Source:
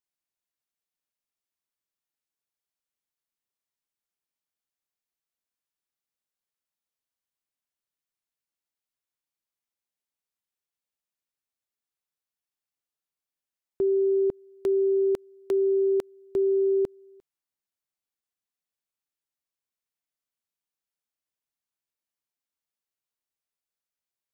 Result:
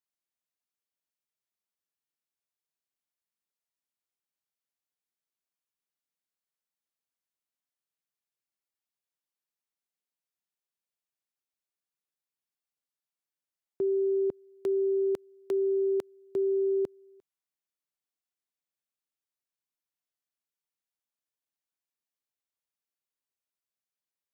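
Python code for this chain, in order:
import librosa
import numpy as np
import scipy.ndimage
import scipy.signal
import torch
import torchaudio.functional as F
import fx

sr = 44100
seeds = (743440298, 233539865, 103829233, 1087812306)

y = scipy.signal.sosfilt(scipy.signal.butter(2, 100.0, 'highpass', fs=sr, output='sos'), x)
y = F.gain(torch.from_numpy(y), -4.0).numpy()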